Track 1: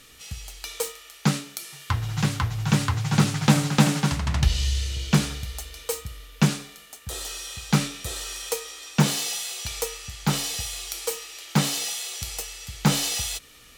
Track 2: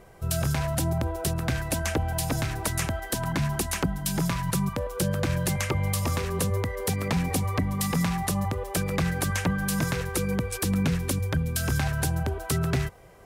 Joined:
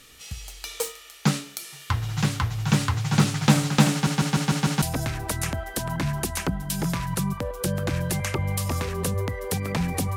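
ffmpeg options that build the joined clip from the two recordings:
-filter_complex "[0:a]apad=whole_dur=10.16,atrim=end=10.16,asplit=6[a][b][c][d][e][f];[a]atrim=end=4.072[g];[b]atrim=start=3.918:end=4.072[h];[c]atrim=start=3.918:end=4.072[i];[d]atrim=start=3.918:end=4.072[j];[e]atrim=start=3.918:end=4.072[k];[f]atrim=start=3.918:end=4.072[l];[1:a]atrim=start=2.178:end=7.52[m];[g][h]acrossfade=d=0.004:c1=hsin:c2=hsin[n];[n][i]acrossfade=d=0.004:c1=hsin:c2=hsin[o];[o][j]acrossfade=d=0.004:c1=hsin:c2=hsin[p];[p][k]acrossfade=d=0.004:c1=hsin:c2=hsin[q];[q][l]acrossfade=d=0.004:c1=hsin:c2=hsin[r];[r][m]acrossfade=d=0.004:c1=hsin:c2=hsin"

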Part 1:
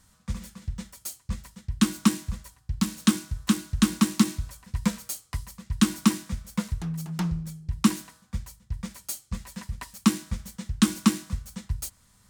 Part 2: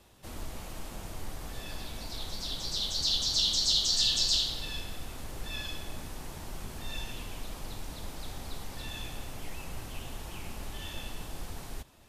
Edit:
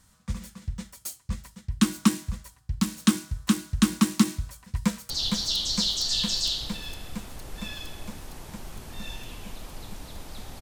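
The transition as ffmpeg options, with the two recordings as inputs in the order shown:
-filter_complex "[0:a]apad=whole_dur=10.61,atrim=end=10.61,atrim=end=5.102[a];[1:a]atrim=start=2.978:end=8.49[b];[a][b]acrossfade=d=0.004:c1=hsin:c2=hsin,asplit=2[c][d];[d]afade=t=in:st=4.77:d=0.01,afade=t=out:st=5.1:d=0.01,aecho=0:1:460|920|1380|1840|2300|2760|3220|3680|4140|4600|5060|5520:0.595662|0.47653|0.381224|0.304979|0.243983|0.195187|0.156149|0.124919|0.0999355|0.0799484|0.0639587|0.051167[e];[c][e]amix=inputs=2:normalize=0"

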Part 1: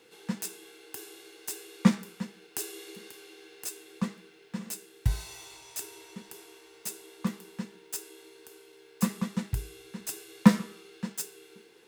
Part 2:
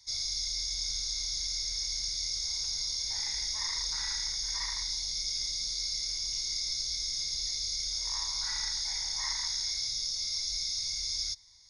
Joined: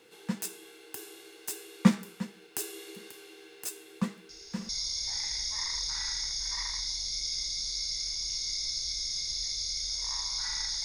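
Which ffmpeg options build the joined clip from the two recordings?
-filter_complex "[1:a]asplit=2[a][b];[0:a]apad=whole_dur=10.84,atrim=end=10.84,atrim=end=4.692[c];[b]atrim=start=2.718:end=8.87[d];[a]atrim=start=2.32:end=2.72,asetpts=PTS-STARTPTS,volume=-15.5dB,afade=t=in:d=0.004:c=hsin,afade=t=out:st=0.396:d=0.004:c=hsin,adelay=189189S[e];[c][d]acrossfade=d=0.004:c1=hsin:c2=hsin[f];[f][e]amix=inputs=2:normalize=0"

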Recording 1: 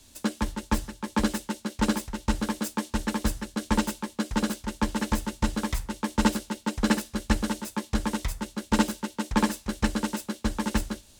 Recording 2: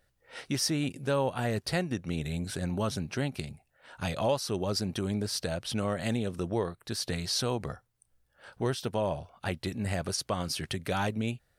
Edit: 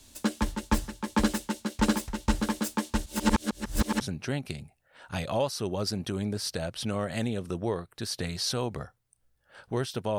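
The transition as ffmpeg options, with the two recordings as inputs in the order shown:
-filter_complex "[0:a]apad=whole_dur=10.18,atrim=end=10.18,asplit=2[a][b];[a]atrim=end=3.062[c];[b]atrim=start=3.058:end=4.012,asetpts=PTS-STARTPTS,areverse[d];[1:a]atrim=start=2.898:end=9.07[e];[c][d]acrossfade=d=0.004:c1=hsin:c2=hsin[f];[f][e]acrossfade=d=0.004:c1=hsin:c2=hsin"

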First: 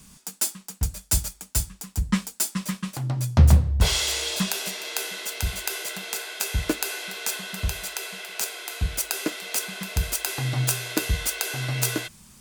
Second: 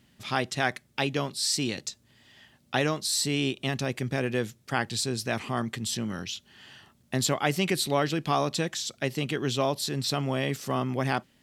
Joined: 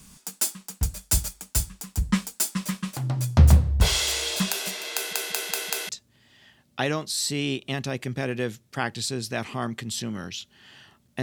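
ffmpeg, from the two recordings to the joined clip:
-filter_complex "[0:a]apad=whole_dur=11.22,atrim=end=11.22,asplit=5[a][b][c][d][e];[a]atrim=end=5.132[f];[b]atrim=start=4.938:end=5.132[g];[c]atrim=start=4.938:end=5.132[h];[d]atrim=start=4.938:end=5.132[i];[e]atrim=start=4.938:end=5.132[j];[1:a]atrim=start=1.838:end=7.17[k];[f][g]acrossfade=d=0.004:c1=hsin:c2=hsin[l];[l][h]acrossfade=d=0.004:c1=hsin:c2=hsin[m];[m][i]acrossfade=d=0.004:c1=hsin:c2=hsin[n];[n][j]acrossfade=d=0.004:c1=hsin:c2=hsin[o];[o][k]acrossfade=d=0.004:c1=hsin:c2=hsin"

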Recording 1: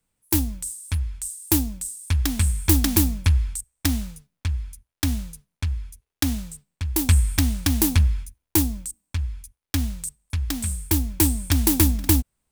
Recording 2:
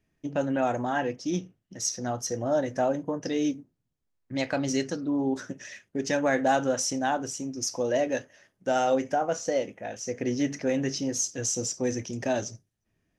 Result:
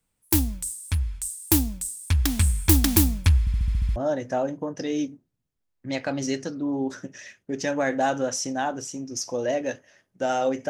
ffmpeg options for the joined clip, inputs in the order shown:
-filter_complex "[0:a]apad=whole_dur=10.69,atrim=end=10.69,asplit=8[a][b][c][d][e][f][g][h];[a]atrim=end=3.472[i];[b]atrim=start=3.398:end=3.472[j];[c]atrim=start=3.398:end=3.472[k];[d]atrim=start=3.398:end=3.472[l];[e]atrim=start=3.398:end=3.472[m];[f]atrim=start=3.398:end=3.472[n];[g]atrim=start=3.398:end=3.472[o];[h]atrim=start=3.398:end=3.472[p];[1:a]atrim=start=2.418:end=9.15[q];[i][j]acrossfade=d=0.004:c1=hsin:c2=hsin[r];[r][k]acrossfade=d=0.004:c1=hsin:c2=hsin[s];[s][l]acrossfade=d=0.004:c1=hsin:c2=hsin[t];[t][m]acrossfade=d=0.004:c1=hsin:c2=hsin[u];[u][n]acrossfade=d=0.004:c1=hsin:c2=hsin[v];[v][o]acrossfade=d=0.004:c1=hsin:c2=hsin[w];[w][p]acrossfade=d=0.004:c1=hsin:c2=hsin[x];[x][q]acrossfade=d=0.004:c1=hsin:c2=hsin"

